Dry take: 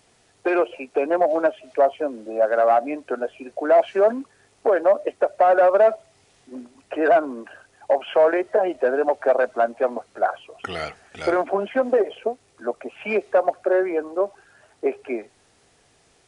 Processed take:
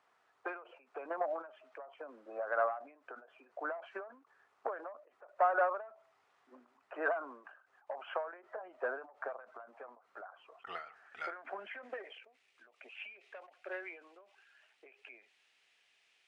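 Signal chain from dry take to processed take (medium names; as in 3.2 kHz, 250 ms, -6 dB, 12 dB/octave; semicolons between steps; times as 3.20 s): band-pass sweep 1.2 kHz -> 2.6 kHz, 10.72–12.61 s; endings held to a fixed fall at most 110 dB/s; trim -3 dB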